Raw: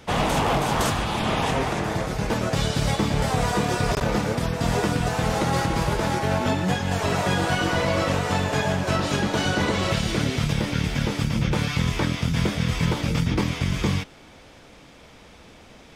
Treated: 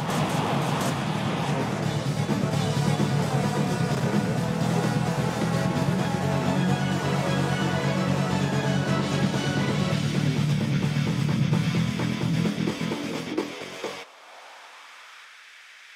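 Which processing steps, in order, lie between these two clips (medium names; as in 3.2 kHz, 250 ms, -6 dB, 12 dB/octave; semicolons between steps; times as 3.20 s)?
upward compressor, threshold -31 dBFS; high-pass sweep 150 Hz -> 1.7 kHz, 12.28–15.46 s; on a send: reverse echo 707 ms -3 dB; on the sum: trim -6 dB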